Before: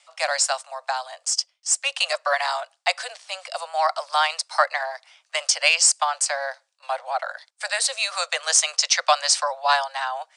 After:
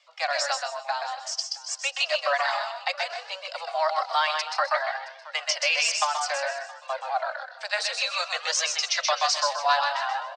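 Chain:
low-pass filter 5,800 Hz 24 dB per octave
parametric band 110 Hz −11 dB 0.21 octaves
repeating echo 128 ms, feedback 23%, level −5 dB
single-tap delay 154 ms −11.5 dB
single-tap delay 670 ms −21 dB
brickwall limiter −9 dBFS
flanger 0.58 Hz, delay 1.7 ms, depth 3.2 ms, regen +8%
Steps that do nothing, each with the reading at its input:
parametric band 110 Hz: nothing at its input below 450 Hz

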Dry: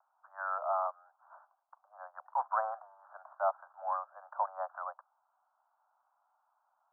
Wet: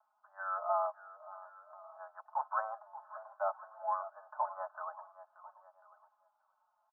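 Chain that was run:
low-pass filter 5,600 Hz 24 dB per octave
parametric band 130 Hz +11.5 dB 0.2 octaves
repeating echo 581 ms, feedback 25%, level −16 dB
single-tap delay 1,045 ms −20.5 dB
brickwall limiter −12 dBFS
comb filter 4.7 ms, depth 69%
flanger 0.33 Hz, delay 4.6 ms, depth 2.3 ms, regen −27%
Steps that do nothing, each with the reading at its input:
low-pass filter 5,600 Hz: nothing at its input above 1,700 Hz
parametric band 130 Hz: nothing at its input below 480 Hz
brickwall limiter −12 dBFS: peak of its input −16.5 dBFS

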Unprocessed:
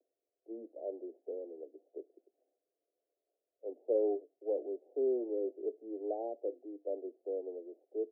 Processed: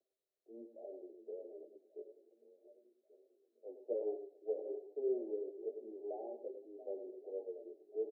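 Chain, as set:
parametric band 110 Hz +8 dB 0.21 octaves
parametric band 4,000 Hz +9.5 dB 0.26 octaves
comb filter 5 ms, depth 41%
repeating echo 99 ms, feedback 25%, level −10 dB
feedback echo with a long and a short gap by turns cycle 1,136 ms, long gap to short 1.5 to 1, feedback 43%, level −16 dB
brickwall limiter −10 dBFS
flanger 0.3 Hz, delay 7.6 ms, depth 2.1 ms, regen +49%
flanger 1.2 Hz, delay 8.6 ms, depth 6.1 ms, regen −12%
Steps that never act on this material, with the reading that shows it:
parametric band 110 Hz: nothing at its input below 240 Hz
parametric band 4,000 Hz: nothing at its input above 810 Hz
brickwall limiter −10 dBFS: peak of its input −20.5 dBFS

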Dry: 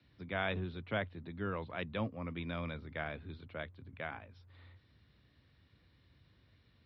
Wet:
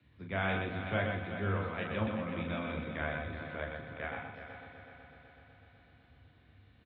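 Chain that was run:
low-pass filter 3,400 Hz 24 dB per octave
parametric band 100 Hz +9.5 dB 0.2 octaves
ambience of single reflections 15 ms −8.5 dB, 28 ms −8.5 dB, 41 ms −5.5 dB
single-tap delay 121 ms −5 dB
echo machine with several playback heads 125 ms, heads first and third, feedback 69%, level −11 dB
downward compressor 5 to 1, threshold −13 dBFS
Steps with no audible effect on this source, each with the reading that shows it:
downward compressor, threshold −13 dBFS: peak of its input −19.5 dBFS

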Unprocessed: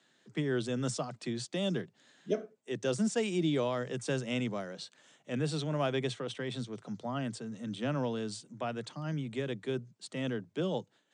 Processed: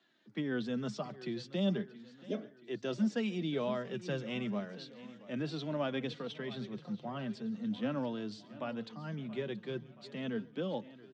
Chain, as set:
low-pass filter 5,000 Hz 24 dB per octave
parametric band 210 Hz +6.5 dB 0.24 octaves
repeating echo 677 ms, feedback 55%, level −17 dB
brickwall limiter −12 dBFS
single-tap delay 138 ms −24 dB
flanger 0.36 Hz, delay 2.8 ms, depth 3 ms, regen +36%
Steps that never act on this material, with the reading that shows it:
brickwall limiter −12 dBFS: peak of its input −16.5 dBFS

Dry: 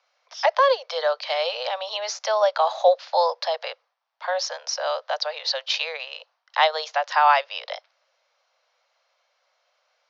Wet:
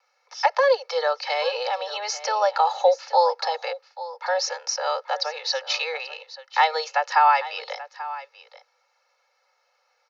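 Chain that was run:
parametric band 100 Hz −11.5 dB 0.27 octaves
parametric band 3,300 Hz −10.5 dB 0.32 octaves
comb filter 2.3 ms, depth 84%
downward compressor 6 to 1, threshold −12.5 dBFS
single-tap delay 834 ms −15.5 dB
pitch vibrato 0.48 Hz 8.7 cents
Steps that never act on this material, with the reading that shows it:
parametric band 100 Hz: nothing at its input below 430 Hz

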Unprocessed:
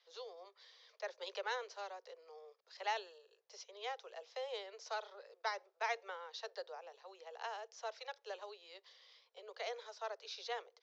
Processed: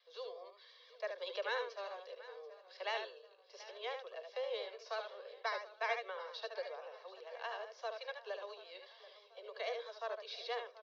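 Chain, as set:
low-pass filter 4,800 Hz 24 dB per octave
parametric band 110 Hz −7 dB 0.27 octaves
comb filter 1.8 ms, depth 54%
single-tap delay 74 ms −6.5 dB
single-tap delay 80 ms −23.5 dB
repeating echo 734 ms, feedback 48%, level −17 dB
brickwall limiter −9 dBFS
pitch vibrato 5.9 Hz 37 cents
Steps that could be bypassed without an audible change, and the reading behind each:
parametric band 110 Hz: nothing at its input below 340 Hz
brickwall limiter −9 dBFS: peak of its input −23.0 dBFS

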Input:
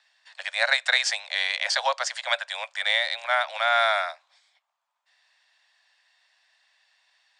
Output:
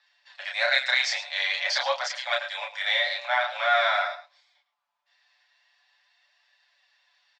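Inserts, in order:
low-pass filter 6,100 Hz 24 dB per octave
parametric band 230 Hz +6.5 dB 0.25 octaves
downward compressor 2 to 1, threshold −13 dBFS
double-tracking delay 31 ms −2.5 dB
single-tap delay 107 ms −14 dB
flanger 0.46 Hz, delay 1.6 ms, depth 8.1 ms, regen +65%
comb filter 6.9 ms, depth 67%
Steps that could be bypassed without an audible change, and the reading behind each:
parametric band 230 Hz: nothing at its input below 480 Hz

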